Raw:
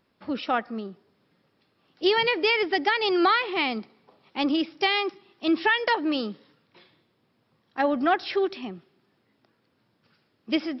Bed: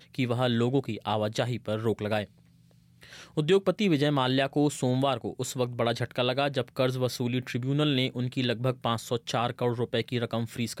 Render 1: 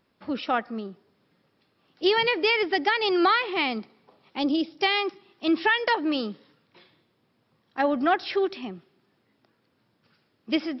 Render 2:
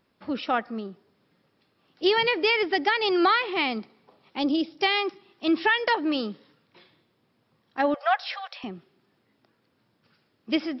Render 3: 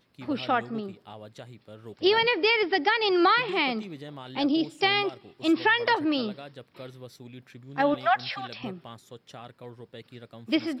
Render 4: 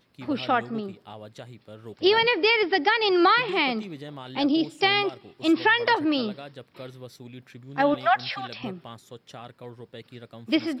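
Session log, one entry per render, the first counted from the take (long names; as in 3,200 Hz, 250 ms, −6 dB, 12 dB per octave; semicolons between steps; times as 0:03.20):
0:04.39–0:04.79: flat-topped bell 1,600 Hz −9 dB
0:07.94–0:08.64: linear-phase brick-wall high-pass 470 Hz
mix in bed −16 dB
level +2 dB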